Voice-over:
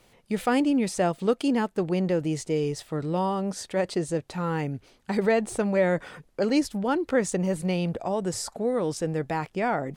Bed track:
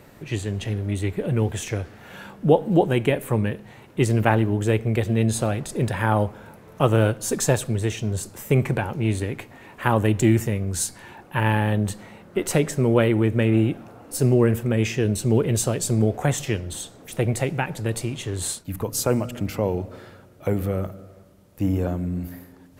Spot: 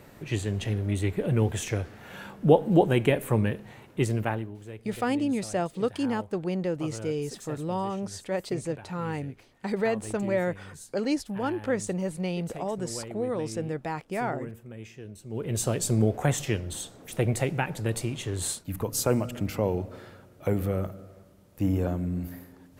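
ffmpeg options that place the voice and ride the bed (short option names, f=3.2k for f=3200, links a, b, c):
-filter_complex "[0:a]adelay=4550,volume=-4dB[a];[1:a]volume=16dB,afade=t=out:st=3.72:d=0.84:silence=0.112202,afade=t=in:st=15.29:d=0.44:silence=0.125893[b];[a][b]amix=inputs=2:normalize=0"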